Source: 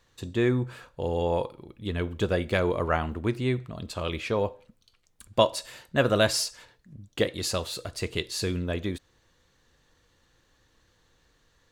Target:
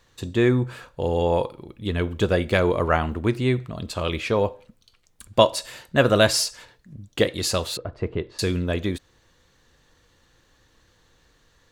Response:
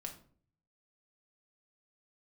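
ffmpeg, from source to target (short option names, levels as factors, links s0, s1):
-filter_complex "[0:a]asettb=1/sr,asplit=3[s0][s1][s2];[s0]atrim=end=7.774[s3];[s1]atrim=start=7.77:end=8.39,asetpts=PTS-STARTPTS,afade=t=in:d=0.004:c=qsin,afade=t=out:st=0.616:d=0.004:c=qsin,lowpass=1200[s4];[s2]atrim=start=8.386[s5];[s3][s4]acrossfade=d=0.004:c1=hsin:c2=qsin[s6];[s6][s5]acrossfade=d=0.004:c1=qsin:c2=hsin,volume=1.78"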